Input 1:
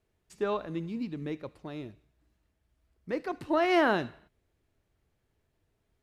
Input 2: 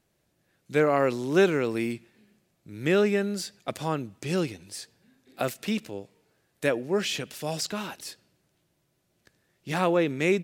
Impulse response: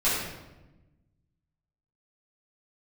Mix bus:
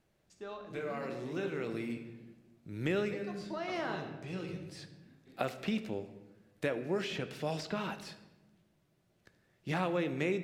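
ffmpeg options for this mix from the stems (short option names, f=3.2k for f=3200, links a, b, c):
-filter_complex "[0:a]equalizer=f=5.8k:w=0.76:g=13.5,volume=-15.5dB,asplit=3[a][b][c];[b]volume=-15.5dB[d];[1:a]acrossover=split=2100|5100[e][f][g];[e]acompressor=threshold=-30dB:ratio=4[h];[f]acompressor=threshold=-40dB:ratio=4[i];[g]acompressor=threshold=-52dB:ratio=4[j];[h][i][j]amix=inputs=3:normalize=0,volume=-1.5dB,asplit=2[k][l];[l]volume=-22dB[m];[c]apad=whole_len=460060[n];[k][n]sidechaincompress=threshold=-55dB:ratio=5:attack=8.9:release=678[o];[2:a]atrim=start_sample=2205[p];[d][m]amix=inputs=2:normalize=0[q];[q][p]afir=irnorm=-1:irlink=0[r];[a][o][r]amix=inputs=3:normalize=0,highshelf=f=4.5k:g=-9.5"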